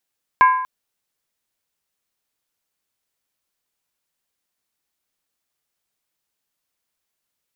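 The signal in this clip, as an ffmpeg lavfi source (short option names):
-f lavfi -i "aevalsrc='0.447*pow(10,-3*t/0.77)*sin(2*PI*1020*t)+0.178*pow(10,-3*t/0.61)*sin(2*PI*1625.9*t)+0.0708*pow(10,-3*t/0.527)*sin(2*PI*2178.7*t)+0.0282*pow(10,-3*t/0.508)*sin(2*PI*2341.9*t)+0.0112*pow(10,-3*t/0.473)*sin(2*PI*2706.1*t)':d=0.24:s=44100"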